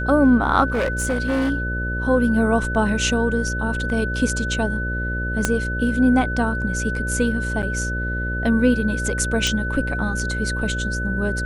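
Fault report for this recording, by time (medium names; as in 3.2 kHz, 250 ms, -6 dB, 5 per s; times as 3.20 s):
buzz 60 Hz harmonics 10 -26 dBFS
whine 1.5 kHz -26 dBFS
0.68–1.51 s: clipped -17 dBFS
5.45 s: pop -4 dBFS
7.62–7.63 s: dropout 8 ms
9.47 s: pop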